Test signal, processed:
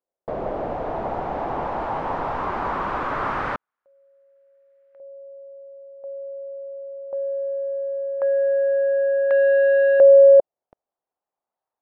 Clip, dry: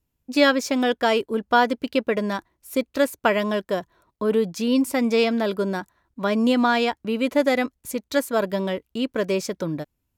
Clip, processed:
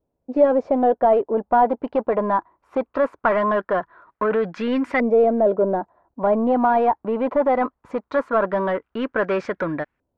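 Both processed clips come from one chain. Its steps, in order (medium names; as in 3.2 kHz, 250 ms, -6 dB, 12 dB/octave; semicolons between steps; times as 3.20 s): saturation -14 dBFS; overdrive pedal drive 15 dB, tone 6.3 kHz, clips at -14 dBFS; LFO low-pass saw up 0.2 Hz 570–1800 Hz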